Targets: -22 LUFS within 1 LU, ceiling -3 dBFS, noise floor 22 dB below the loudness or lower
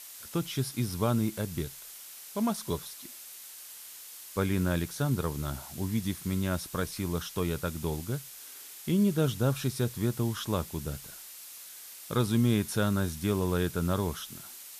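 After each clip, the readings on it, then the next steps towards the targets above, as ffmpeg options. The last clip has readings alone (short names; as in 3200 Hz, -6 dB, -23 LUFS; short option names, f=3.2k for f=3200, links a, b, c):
noise floor -47 dBFS; noise floor target -53 dBFS; loudness -31.0 LUFS; peak -15.0 dBFS; loudness target -22.0 LUFS
-> -af "afftdn=nr=6:nf=-47"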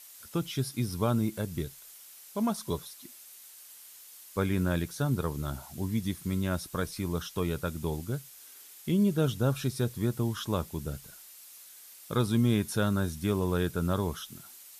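noise floor -51 dBFS; noise floor target -53 dBFS
-> -af "afftdn=nr=6:nf=-51"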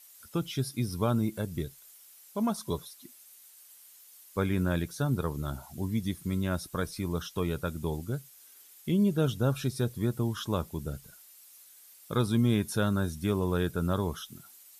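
noise floor -55 dBFS; loudness -31.0 LUFS; peak -15.0 dBFS; loudness target -22.0 LUFS
-> -af "volume=9dB"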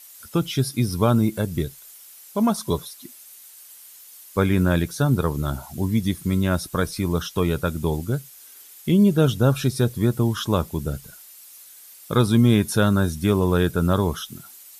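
loudness -22.0 LUFS; peak -6.0 dBFS; noise floor -46 dBFS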